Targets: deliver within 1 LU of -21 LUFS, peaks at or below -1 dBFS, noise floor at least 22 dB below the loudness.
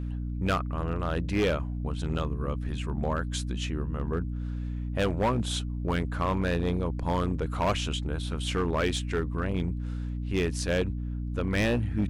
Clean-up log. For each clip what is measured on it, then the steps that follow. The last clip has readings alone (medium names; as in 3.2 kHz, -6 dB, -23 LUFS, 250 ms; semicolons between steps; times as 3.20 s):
clipped samples 1.5%; clipping level -20.5 dBFS; hum 60 Hz; highest harmonic 300 Hz; hum level -30 dBFS; loudness -30.0 LUFS; peak level -20.5 dBFS; loudness target -21.0 LUFS
-> clip repair -20.5 dBFS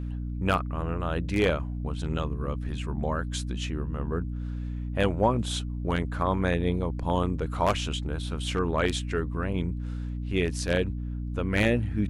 clipped samples 0.0%; hum 60 Hz; highest harmonic 300 Hz; hum level -30 dBFS
-> hum notches 60/120/180/240/300 Hz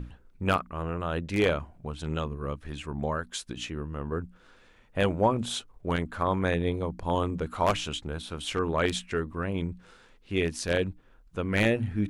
hum not found; loudness -30.0 LUFS; peak level -10.5 dBFS; loudness target -21.0 LUFS
-> trim +9 dB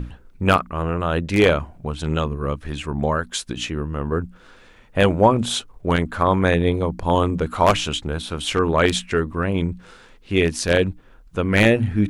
loudness -21.0 LUFS; peak level -1.5 dBFS; noise floor -49 dBFS